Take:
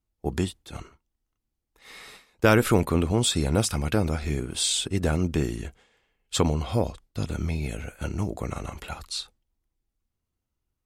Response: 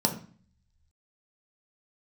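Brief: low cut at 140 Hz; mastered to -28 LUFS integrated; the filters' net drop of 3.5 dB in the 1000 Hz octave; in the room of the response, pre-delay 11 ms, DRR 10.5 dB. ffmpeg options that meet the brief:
-filter_complex "[0:a]highpass=140,equalizer=f=1k:t=o:g=-5,asplit=2[a][b];[1:a]atrim=start_sample=2205,adelay=11[c];[b][c]afir=irnorm=-1:irlink=0,volume=-20.5dB[d];[a][d]amix=inputs=2:normalize=0,volume=-1.5dB"

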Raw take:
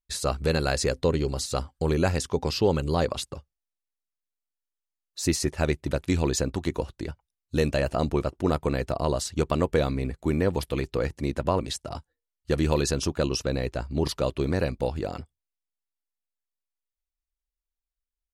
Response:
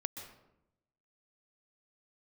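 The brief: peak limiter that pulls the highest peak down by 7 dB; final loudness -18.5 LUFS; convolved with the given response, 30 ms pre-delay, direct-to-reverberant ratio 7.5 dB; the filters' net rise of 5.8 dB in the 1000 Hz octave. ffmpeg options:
-filter_complex "[0:a]equalizer=f=1k:t=o:g=7.5,alimiter=limit=-13.5dB:level=0:latency=1,asplit=2[a][b];[1:a]atrim=start_sample=2205,adelay=30[c];[b][c]afir=irnorm=-1:irlink=0,volume=-7dB[d];[a][d]amix=inputs=2:normalize=0,volume=8dB"

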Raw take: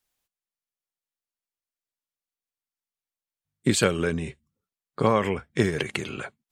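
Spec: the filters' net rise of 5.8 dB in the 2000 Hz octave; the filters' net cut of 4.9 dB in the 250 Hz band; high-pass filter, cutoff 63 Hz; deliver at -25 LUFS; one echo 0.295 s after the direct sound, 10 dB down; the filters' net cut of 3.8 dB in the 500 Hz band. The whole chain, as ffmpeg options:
-af "highpass=63,equalizer=f=250:t=o:g=-6,equalizer=f=500:t=o:g=-3,equalizer=f=2k:t=o:g=7.5,aecho=1:1:295:0.316,volume=0.5dB"

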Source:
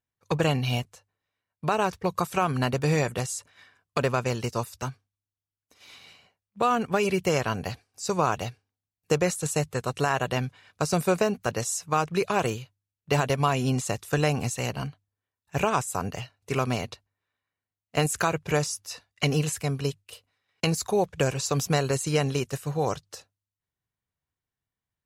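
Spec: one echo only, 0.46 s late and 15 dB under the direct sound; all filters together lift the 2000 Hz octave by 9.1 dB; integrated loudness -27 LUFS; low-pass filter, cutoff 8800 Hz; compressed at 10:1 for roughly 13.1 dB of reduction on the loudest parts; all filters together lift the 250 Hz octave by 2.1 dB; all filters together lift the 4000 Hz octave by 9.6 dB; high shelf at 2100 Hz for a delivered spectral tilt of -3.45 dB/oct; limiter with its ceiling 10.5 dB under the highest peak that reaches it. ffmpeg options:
-af "lowpass=8.8k,equalizer=f=250:t=o:g=3,equalizer=f=2k:t=o:g=8,highshelf=f=2.1k:g=3,equalizer=f=4k:t=o:g=7,acompressor=threshold=-26dB:ratio=10,alimiter=limit=-19.5dB:level=0:latency=1,aecho=1:1:460:0.178,volume=6dB"

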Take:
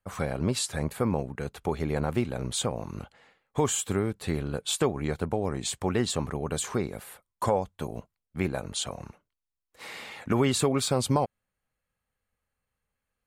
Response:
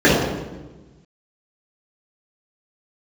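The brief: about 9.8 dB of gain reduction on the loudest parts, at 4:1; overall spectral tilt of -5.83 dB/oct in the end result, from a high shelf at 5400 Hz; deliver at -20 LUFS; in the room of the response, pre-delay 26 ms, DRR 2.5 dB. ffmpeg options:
-filter_complex "[0:a]highshelf=f=5.4k:g=-6,acompressor=threshold=-32dB:ratio=4,asplit=2[a][b];[1:a]atrim=start_sample=2205,adelay=26[c];[b][c]afir=irnorm=-1:irlink=0,volume=-31dB[d];[a][d]amix=inputs=2:normalize=0,volume=12.5dB"

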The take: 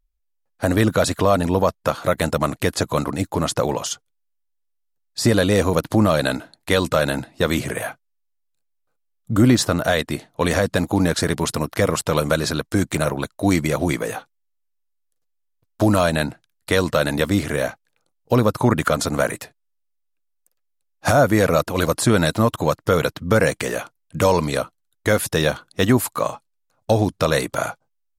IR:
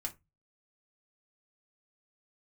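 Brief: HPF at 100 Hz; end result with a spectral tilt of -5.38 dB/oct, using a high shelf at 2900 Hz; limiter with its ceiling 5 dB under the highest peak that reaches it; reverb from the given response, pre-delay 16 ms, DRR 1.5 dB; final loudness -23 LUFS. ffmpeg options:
-filter_complex "[0:a]highpass=100,highshelf=f=2.9k:g=-7,alimiter=limit=-8.5dB:level=0:latency=1,asplit=2[a][b];[1:a]atrim=start_sample=2205,adelay=16[c];[b][c]afir=irnorm=-1:irlink=0,volume=-1dB[d];[a][d]amix=inputs=2:normalize=0,volume=-2.5dB"

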